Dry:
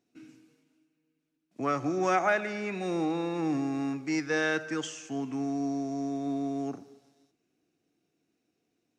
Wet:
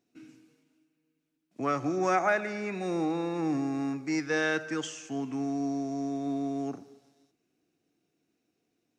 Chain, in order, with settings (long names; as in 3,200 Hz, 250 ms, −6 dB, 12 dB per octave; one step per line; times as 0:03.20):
0:01.96–0:04.20: parametric band 3,100 Hz −7.5 dB 0.36 octaves